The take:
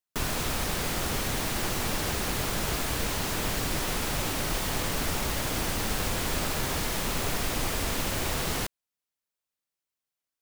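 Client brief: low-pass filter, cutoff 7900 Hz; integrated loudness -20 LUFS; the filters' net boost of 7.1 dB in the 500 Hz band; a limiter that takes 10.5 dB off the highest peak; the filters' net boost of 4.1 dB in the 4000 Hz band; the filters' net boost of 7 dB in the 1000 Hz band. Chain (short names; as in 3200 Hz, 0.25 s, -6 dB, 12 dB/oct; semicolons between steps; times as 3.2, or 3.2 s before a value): LPF 7900 Hz; bell 500 Hz +7 dB; bell 1000 Hz +6.5 dB; bell 4000 Hz +5 dB; gain +12.5 dB; limiter -11 dBFS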